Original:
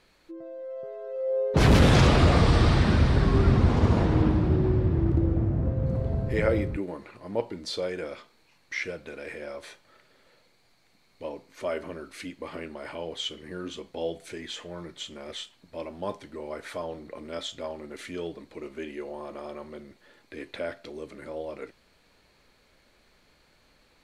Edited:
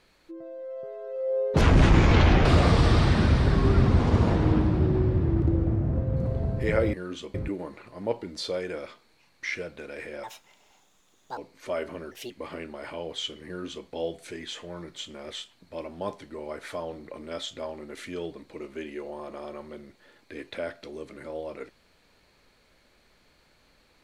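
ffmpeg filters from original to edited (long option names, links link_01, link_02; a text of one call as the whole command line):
ffmpeg -i in.wav -filter_complex "[0:a]asplit=9[link_01][link_02][link_03][link_04][link_05][link_06][link_07][link_08][link_09];[link_01]atrim=end=1.614[link_10];[link_02]atrim=start=1.61:end=2.15,asetpts=PTS-STARTPTS,asetrate=28224,aresample=44100,atrim=end_sample=37209,asetpts=PTS-STARTPTS[link_11];[link_03]atrim=start=2.146:end=6.632[link_12];[link_04]atrim=start=13.478:end=13.892[link_13];[link_05]atrim=start=6.628:end=9.524[link_14];[link_06]atrim=start=9.52:end=11.32,asetpts=PTS-STARTPTS,asetrate=69678,aresample=44100[link_15];[link_07]atrim=start=11.316:end=12.064[link_16];[link_08]atrim=start=12.06:end=12.32,asetpts=PTS-STARTPTS,asetrate=59535,aresample=44100,atrim=end_sample=8493,asetpts=PTS-STARTPTS[link_17];[link_09]atrim=start=12.316[link_18];[link_10][link_11]acrossfade=duration=0.004:curve1=hsin:curve2=hsin[link_19];[link_19][link_12]acrossfade=duration=0.004:curve1=hsin:curve2=hsin[link_20];[link_20][link_13]acrossfade=duration=0.004:curve1=hsin:curve2=hsin[link_21];[link_21][link_14]acrossfade=duration=0.004:curve1=hsin:curve2=hsin[link_22];[link_22][link_15]acrossfade=duration=0.004:curve1=hsin:curve2=hsin[link_23];[link_23][link_16]acrossfade=duration=0.004:curve1=hsin:curve2=hsin[link_24];[link_24][link_17]acrossfade=duration=0.004:curve1=hsin:curve2=hsin[link_25];[link_25][link_18]acrossfade=duration=0.004:curve1=hsin:curve2=hsin" out.wav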